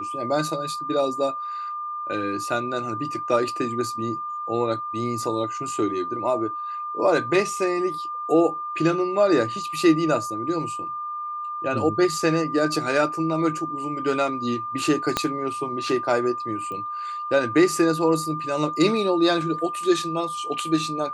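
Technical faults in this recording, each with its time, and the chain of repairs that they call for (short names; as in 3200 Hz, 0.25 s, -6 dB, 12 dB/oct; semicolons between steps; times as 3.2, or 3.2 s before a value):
tone 1200 Hz -28 dBFS
15.17 pop -6 dBFS
16.72 pop -23 dBFS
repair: de-click; notch 1200 Hz, Q 30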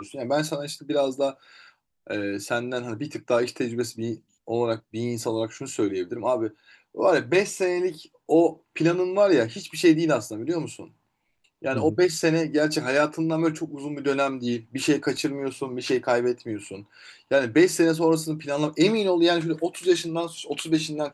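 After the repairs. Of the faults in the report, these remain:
15.17 pop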